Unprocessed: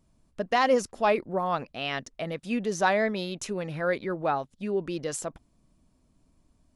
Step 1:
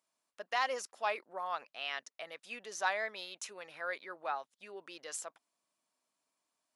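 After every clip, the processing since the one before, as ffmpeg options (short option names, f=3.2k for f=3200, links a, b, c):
-af "highpass=880,volume=-6dB"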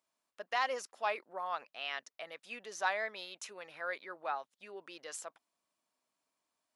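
-af "equalizer=f=8.7k:w=0.63:g=-3.5"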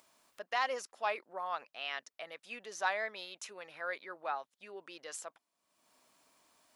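-af "acompressor=mode=upward:threshold=-54dB:ratio=2.5"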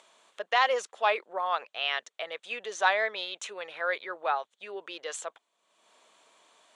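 -af "highpass=270,equalizer=f=270:t=q:w=4:g=-8,equalizer=f=460:t=q:w=4:g=4,equalizer=f=3.4k:t=q:w=4:g=6,equalizer=f=5.1k:t=q:w=4:g=-10,lowpass=f=8.2k:w=0.5412,lowpass=f=8.2k:w=1.3066,volume=8.5dB"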